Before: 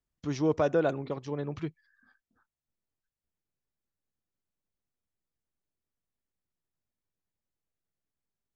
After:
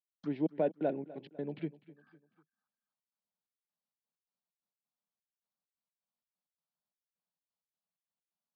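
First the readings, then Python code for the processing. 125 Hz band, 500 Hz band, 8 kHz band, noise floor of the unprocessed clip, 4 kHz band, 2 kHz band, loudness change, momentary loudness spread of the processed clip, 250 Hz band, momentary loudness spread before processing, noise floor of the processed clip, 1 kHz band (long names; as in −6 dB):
−9.5 dB, −6.5 dB, can't be measured, below −85 dBFS, −12.0 dB, −12.5 dB, −6.0 dB, 10 LU, −4.0 dB, 12 LU, below −85 dBFS, −7.5 dB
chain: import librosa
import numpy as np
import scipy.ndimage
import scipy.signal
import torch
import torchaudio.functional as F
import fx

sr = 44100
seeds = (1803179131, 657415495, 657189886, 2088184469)

y = fx.env_phaser(x, sr, low_hz=350.0, high_hz=1200.0, full_db=-33.5)
y = fx.env_lowpass_down(y, sr, base_hz=1700.0, full_db=-30.5)
y = fx.step_gate(y, sr, bpm=130, pattern='..xx.x.xx.x.xxx', floor_db=-60.0, edge_ms=4.5)
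y = scipy.signal.sosfilt(scipy.signal.ellip(3, 1.0, 40, [180.0, 4500.0], 'bandpass', fs=sr, output='sos'), y)
y = fx.echo_feedback(y, sr, ms=250, feedback_pct=44, wet_db=-19)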